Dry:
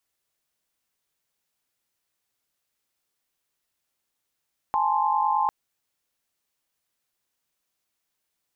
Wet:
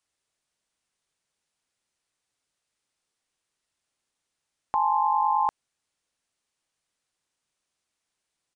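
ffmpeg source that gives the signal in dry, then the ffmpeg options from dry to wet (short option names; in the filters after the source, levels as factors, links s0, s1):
-f lavfi -i "aevalsrc='0.0596*(sin(2*PI*830.61*t)+sin(2*PI*880*t)+sin(2*PI*1046.5*t))':d=0.75:s=44100"
-af "aresample=22050,aresample=44100"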